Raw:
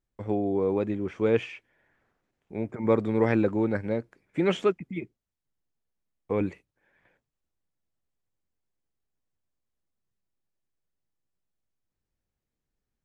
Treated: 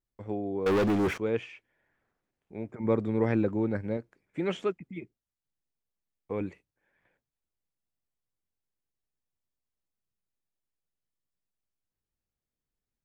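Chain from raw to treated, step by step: 0.66–1.18 sample leveller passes 5; 2.8–3.97 low shelf 360 Hz +5.5 dB; gain -6 dB

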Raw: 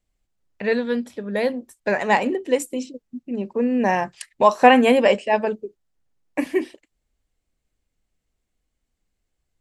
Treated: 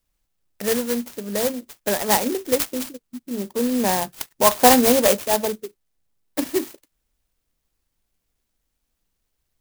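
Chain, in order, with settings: band shelf 5000 Hz +11.5 dB; clock jitter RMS 0.11 ms; gain -1 dB

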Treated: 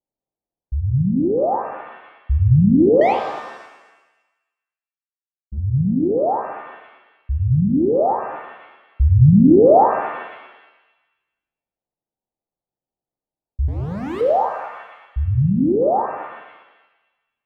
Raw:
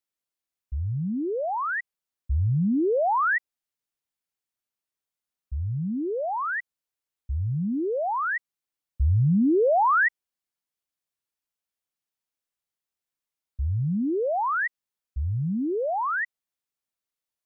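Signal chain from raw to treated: steep low-pass 870 Hz 48 dB/oct; 3.01–5.58 power-law curve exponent 2; 13.68–14.21 overloaded stage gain 35.5 dB; shimmer reverb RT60 1.1 s, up +7 st, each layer -8 dB, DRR 4.5 dB; gain +8.5 dB

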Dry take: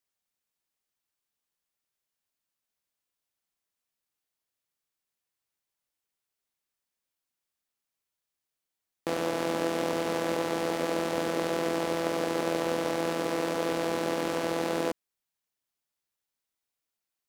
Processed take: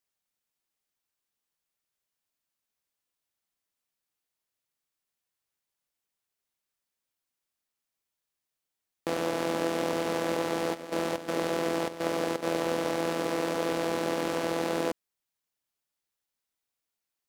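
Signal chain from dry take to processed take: 10.73–12.42 step gate "x.xxx..xx.xxxx" 125 bpm -12 dB

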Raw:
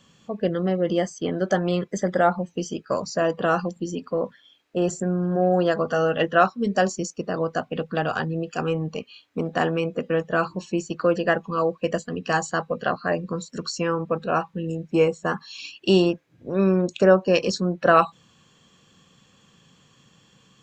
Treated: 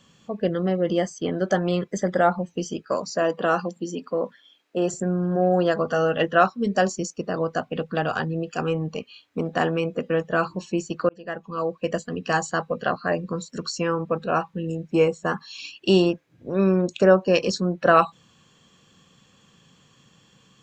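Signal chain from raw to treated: 2.88–4.94 HPF 190 Hz 12 dB/oct; 11.09–12.27 fade in equal-power

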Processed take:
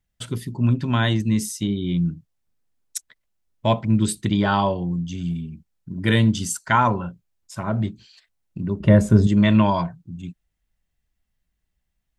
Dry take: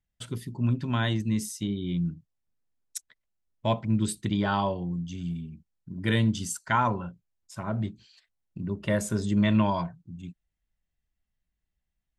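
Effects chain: 8.8–9.27 tilt -3 dB/oct; gain +6.5 dB

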